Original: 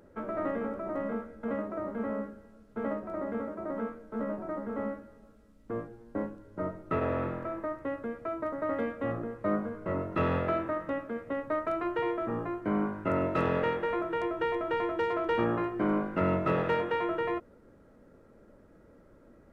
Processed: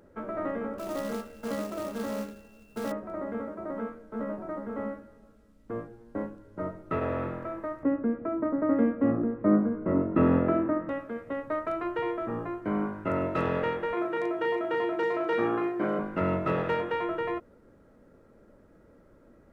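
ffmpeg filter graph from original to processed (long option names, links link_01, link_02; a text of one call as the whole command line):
ffmpeg -i in.wav -filter_complex "[0:a]asettb=1/sr,asplit=3[link_01][link_02][link_03];[link_01]atrim=end=0.784[link_04];[link_02]atrim=start=0.78:end=2.92,asetpts=PTS-STARTPTS,afade=type=in:duration=0.004:curve=qsin,afade=type=out:start_time=2.136:duration=0.004:curve=qsin,aeval=exprs='val(0)+0.000708*sin(2*PI*2700*n/s)':channel_layout=same,asplit=2[link_05][link_06];[link_06]adelay=24,volume=-10.5dB[link_07];[link_05][link_07]amix=inputs=2:normalize=0,atrim=end_sample=94374,acrusher=bits=3:mode=log:mix=0:aa=0.000001[link_08];[link_03]atrim=start=2.916[link_09];[link_04][link_08]acrossfade=duration=0.004:curve1=hsin:curve2=qsin[link_10];[link_10][link_09]acrossfade=duration=0.004:curve1=qsin:curve2=hsin,asettb=1/sr,asplit=3[link_11][link_12][link_13];[link_11]atrim=end=7.834[link_14];[link_12]atrim=start=7.83:end=10.89,asetpts=PTS-STARTPTS,afade=type=in:duration=0.004:curve=qsin,afade=type=out:start_time=3.056:duration=0.004:curve=qsin,lowpass=1900,equalizer=frequency=260:width=1.3:gain=13,acompressor=mode=upward:threshold=-35dB:ratio=2.5:attack=3.2:release=140:knee=2.83:detection=peak[link_15];[link_13]atrim=start=10.886[link_16];[link_14][link_15]acrossfade=duration=0.004:curve1=hsin:curve2=qsin[link_17];[link_17][link_16]acrossfade=duration=0.004:curve1=qsin:curve2=hsin,asettb=1/sr,asplit=3[link_18][link_19][link_20];[link_18]atrim=end=13.934[link_21];[link_19]atrim=start=13.93:end=15.99,asetpts=PTS-STARTPTS,afade=type=in:duration=0.004:curve=qsin,afade=type=out:start_time=2.056:duration=0.004:curve=qsin,highpass=170,asplit=2[link_22][link_23];[link_23]adelay=37,volume=-3dB[link_24];[link_22][link_24]amix=inputs=2:normalize=0,atrim=end_sample=90846[link_25];[link_20]atrim=start=15.986[link_26];[link_21][link_25]acrossfade=duration=0.004:curve1=hsin:curve2=qsin[link_27];[link_27][link_26]acrossfade=duration=0.004:curve1=qsin:curve2=hsin" out.wav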